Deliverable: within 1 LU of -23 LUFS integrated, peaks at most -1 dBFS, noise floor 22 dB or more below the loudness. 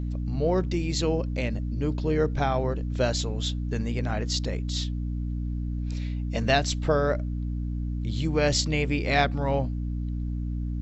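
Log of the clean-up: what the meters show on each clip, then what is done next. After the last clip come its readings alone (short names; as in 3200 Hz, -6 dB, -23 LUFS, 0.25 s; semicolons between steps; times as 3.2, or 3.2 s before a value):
hum 60 Hz; harmonics up to 300 Hz; hum level -27 dBFS; loudness -27.5 LUFS; peak -8.5 dBFS; loudness target -23.0 LUFS
-> de-hum 60 Hz, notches 5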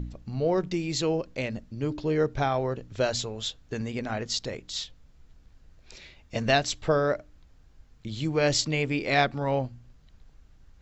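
hum none; loudness -28.0 LUFS; peak -9.0 dBFS; loudness target -23.0 LUFS
-> gain +5 dB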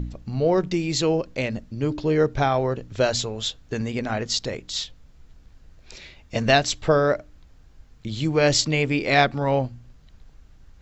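loudness -23.0 LUFS; peak -4.0 dBFS; noise floor -52 dBFS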